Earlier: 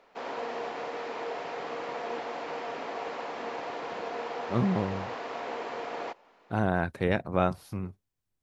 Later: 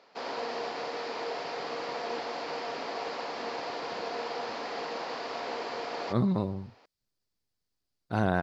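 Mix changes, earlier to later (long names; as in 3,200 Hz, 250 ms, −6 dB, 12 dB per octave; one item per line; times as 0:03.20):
speech: entry +1.60 s
master: add parametric band 4,700 Hz +12 dB 0.56 octaves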